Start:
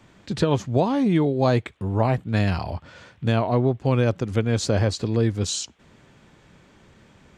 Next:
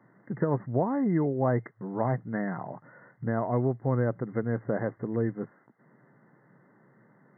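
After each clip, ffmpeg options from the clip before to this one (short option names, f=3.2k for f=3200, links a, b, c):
-af "afftfilt=real='re*between(b*sr/4096,110,2100)':imag='im*between(b*sr/4096,110,2100)':win_size=4096:overlap=0.75,volume=-6dB"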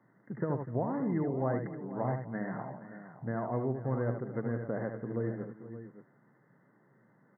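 -af "aecho=1:1:76|248|471|575:0.473|0.126|0.178|0.237,volume=-6.5dB"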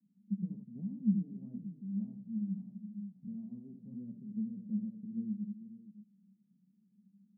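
-af "flanger=delay=6.5:depth=4.5:regen=38:speed=1.2:shape=triangular,asuperpass=centerf=200:order=4:qfactor=5.4,volume=10.5dB"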